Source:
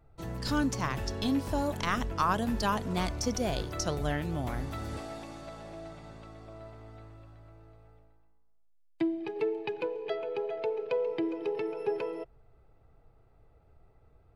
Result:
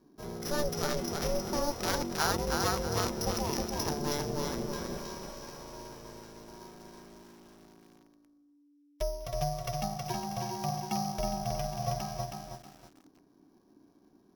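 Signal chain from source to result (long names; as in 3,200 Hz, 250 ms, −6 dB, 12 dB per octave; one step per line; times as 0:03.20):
samples sorted by size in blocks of 8 samples
ring modulation 290 Hz
feedback echo at a low word length 319 ms, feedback 35%, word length 9 bits, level −3.5 dB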